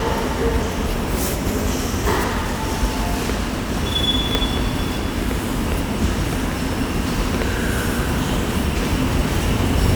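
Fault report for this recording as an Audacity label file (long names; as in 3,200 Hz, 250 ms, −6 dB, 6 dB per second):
4.350000	4.350000	click −2 dBFS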